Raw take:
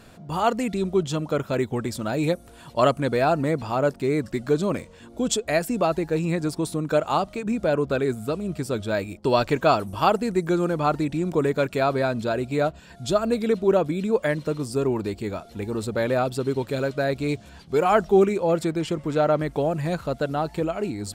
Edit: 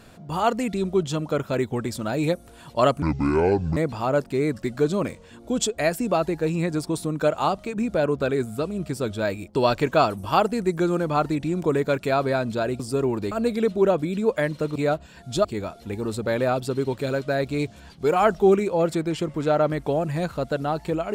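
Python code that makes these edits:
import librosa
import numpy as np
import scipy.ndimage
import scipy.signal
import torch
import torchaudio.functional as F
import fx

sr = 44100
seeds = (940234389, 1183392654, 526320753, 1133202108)

y = fx.edit(x, sr, fx.speed_span(start_s=3.02, length_s=0.44, speed=0.59),
    fx.swap(start_s=12.49, length_s=0.69, other_s=14.62, other_length_s=0.52), tone=tone)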